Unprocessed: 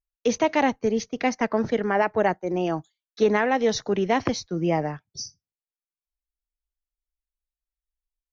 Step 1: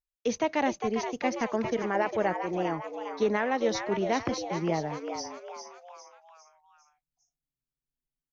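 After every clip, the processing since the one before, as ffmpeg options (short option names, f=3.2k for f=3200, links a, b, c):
-filter_complex "[0:a]asplit=6[a][b][c][d][e][f];[b]adelay=403,afreqshift=120,volume=-7.5dB[g];[c]adelay=806,afreqshift=240,volume=-14.1dB[h];[d]adelay=1209,afreqshift=360,volume=-20.6dB[i];[e]adelay=1612,afreqshift=480,volume=-27.2dB[j];[f]adelay=2015,afreqshift=600,volume=-33.7dB[k];[a][g][h][i][j][k]amix=inputs=6:normalize=0,volume=-6dB"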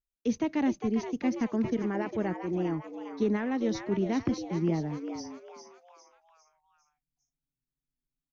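-af "lowshelf=f=410:t=q:w=1.5:g=9.5,volume=-7dB"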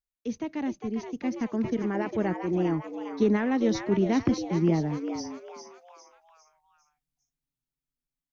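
-af "dynaudnorm=f=390:g=9:m=8.5dB,volume=-4dB"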